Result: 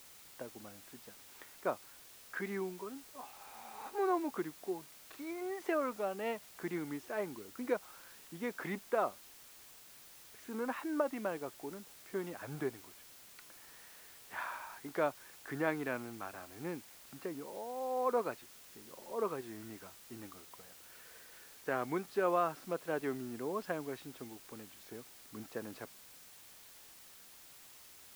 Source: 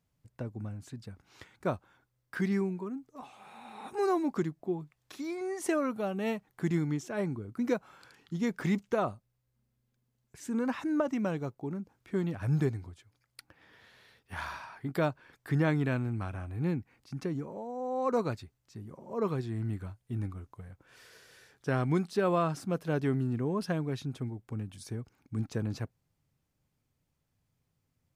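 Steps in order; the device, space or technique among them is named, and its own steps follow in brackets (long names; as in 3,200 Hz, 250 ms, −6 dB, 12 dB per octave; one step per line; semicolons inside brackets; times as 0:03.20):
wax cylinder (band-pass filter 400–2,500 Hz; tape wow and flutter; white noise bed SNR 16 dB)
level −1.5 dB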